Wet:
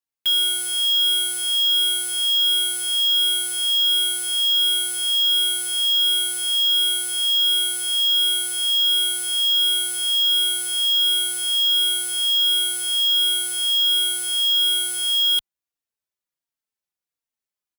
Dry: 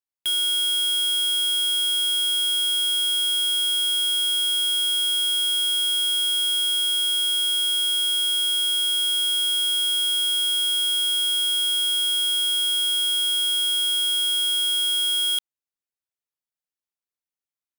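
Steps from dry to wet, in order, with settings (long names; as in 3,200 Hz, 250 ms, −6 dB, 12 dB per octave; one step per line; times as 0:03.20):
barber-pole flanger 3.8 ms −1.4 Hz
level +5 dB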